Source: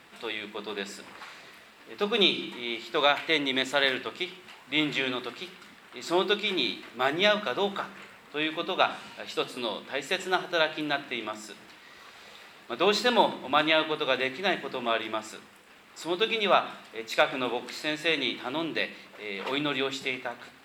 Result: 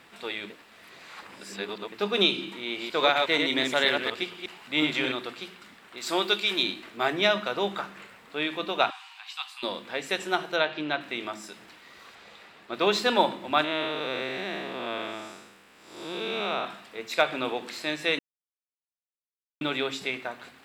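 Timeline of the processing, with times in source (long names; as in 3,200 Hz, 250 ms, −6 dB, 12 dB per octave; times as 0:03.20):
0:00.50–0:01.92: reverse
0:02.66–0:05.12: delay that plays each chunk backwards 120 ms, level −3.5 dB
0:05.97–0:06.63: spectral tilt +2 dB per octave
0:08.90–0:09.63: Chebyshev high-pass with heavy ripple 750 Hz, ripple 6 dB
0:10.56–0:11.01: low-pass filter 4,400 Hz
0:12.15–0:12.74: high-shelf EQ 5,700 Hz −8 dB
0:13.64–0:16.65: spectrum smeared in time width 261 ms
0:18.19–0:19.61: silence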